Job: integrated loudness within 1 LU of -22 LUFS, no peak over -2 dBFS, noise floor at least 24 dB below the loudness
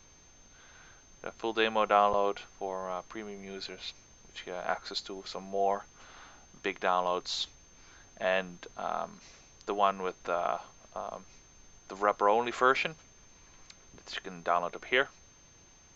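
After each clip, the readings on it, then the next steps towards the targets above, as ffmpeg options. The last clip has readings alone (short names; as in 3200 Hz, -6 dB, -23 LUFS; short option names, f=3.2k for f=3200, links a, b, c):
steady tone 6300 Hz; tone level -59 dBFS; loudness -32.0 LUFS; peak -10.0 dBFS; loudness target -22.0 LUFS
-> -af "bandreject=f=6.3k:w=30"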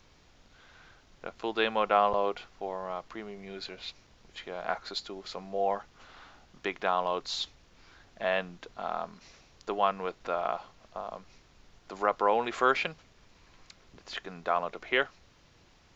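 steady tone none; loudness -32.0 LUFS; peak -10.0 dBFS; loudness target -22.0 LUFS
-> -af "volume=10dB,alimiter=limit=-2dB:level=0:latency=1"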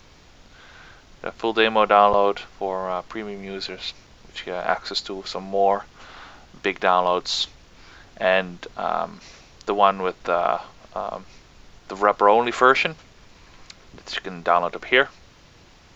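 loudness -22.0 LUFS; peak -2.0 dBFS; noise floor -51 dBFS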